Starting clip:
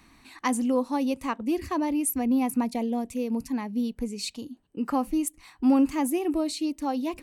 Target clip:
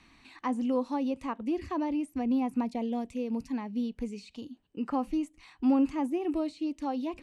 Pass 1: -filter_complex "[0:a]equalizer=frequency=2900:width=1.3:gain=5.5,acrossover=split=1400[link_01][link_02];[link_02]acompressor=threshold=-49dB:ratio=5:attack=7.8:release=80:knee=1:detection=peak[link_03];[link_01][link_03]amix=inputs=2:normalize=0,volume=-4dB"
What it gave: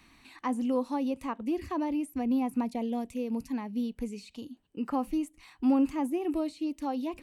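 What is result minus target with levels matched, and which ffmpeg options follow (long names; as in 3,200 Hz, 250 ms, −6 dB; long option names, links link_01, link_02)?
8,000 Hz band +4.5 dB
-filter_complex "[0:a]equalizer=frequency=2900:width=1.3:gain=5.5,acrossover=split=1400[link_01][link_02];[link_02]acompressor=threshold=-49dB:ratio=5:attack=7.8:release=80:knee=1:detection=peak,lowpass=7300[link_03];[link_01][link_03]amix=inputs=2:normalize=0,volume=-4dB"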